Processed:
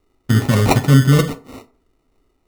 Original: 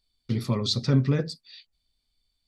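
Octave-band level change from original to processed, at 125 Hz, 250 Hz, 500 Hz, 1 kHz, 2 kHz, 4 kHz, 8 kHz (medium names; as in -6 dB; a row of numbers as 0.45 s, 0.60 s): +12.0 dB, +10.5 dB, +10.5 dB, +18.0 dB, +17.5 dB, +3.5 dB, +13.5 dB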